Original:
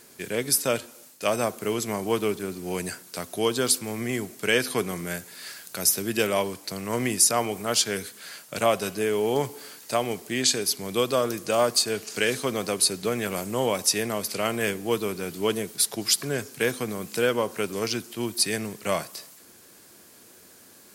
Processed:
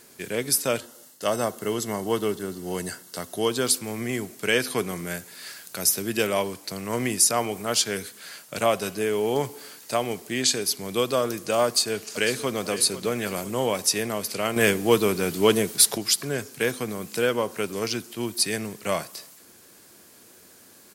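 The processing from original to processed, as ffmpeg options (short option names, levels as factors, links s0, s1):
-filter_complex "[0:a]asettb=1/sr,asplit=3[s0][s1][s2];[s0]atrim=end=0.804[s3];[s1]atrim=start=0.8:end=3.48,asetpts=PTS-STARTPTS,afade=t=in:d=0.004:c=qsin,afade=t=out:st=2.676:d=0.004:c=qsin,asuperstop=centerf=2400:order=8:qfactor=6.9[s4];[s2]atrim=start=3.476[s5];[s3][s4]acrossfade=d=0.004:c1=hsin:c2=qsin[s6];[s6][s5]acrossfade=d=0.004:c1=qsin:c2=hsin,asplit=2[s7][s8];[s8]afade=t=in:st=11.65:d=0.01,afade=t=out:st=12.62:d=0.01,aecho=0:1:500|1000|1500|2000|2500:0.223872|0.111936|0.055968|0.027984|0.013992[s9];[s7][s9]amix=inputs=2:normalize=0,asettb=1/sr,asplit=3[s10][s11][s12];[s10]atrim=end=14.564[s13];[s11]atrim=start=14.56:end=15.98,asetpts=PTS-STARTPTS,afade=t=in:d=0.004:c=qsin,afade=t=out:st=1.416:d=0.004:c=qsin,acontrast=70[s14];[s12]atrim=start=15.976[s15];[s13][s14]acrossfade=d=0.004:c1=hsin:c2=qsin[s16];[s16][s15]acrossfade=d=0.004:c1=qsin:c2=hsin"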